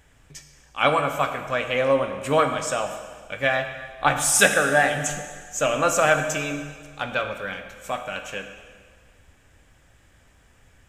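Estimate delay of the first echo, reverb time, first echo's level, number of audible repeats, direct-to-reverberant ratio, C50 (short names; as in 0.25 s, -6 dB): none, 1.7 s, none, none, 5.5 dB, 7.5 dB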